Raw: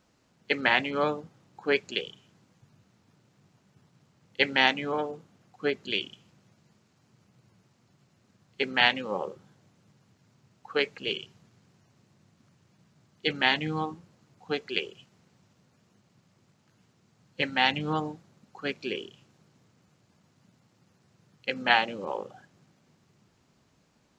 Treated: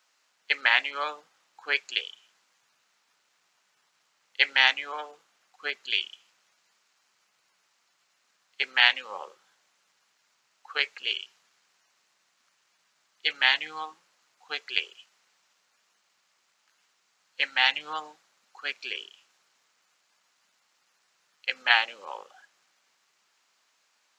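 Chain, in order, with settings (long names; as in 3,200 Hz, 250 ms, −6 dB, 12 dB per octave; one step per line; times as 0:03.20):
high-pass filter 1,200 Hz 12 dB per octave
level +3.5 dB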